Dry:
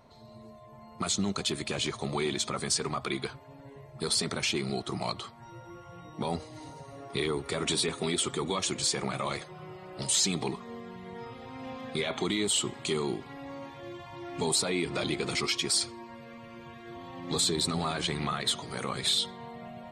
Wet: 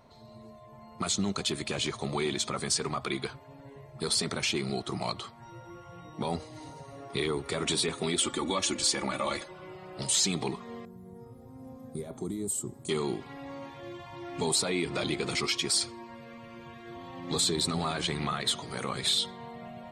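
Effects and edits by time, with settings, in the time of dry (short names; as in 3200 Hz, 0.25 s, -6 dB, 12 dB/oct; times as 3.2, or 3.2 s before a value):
8.18–9.75 comb 3.5 ms
10.85–12.89 EQ curve 110 Hz 0 dB, 450 Hz -6 dB, 1400 Hz -18 dB, 2900 Hz -30 dB, 12000 Hz +8 dB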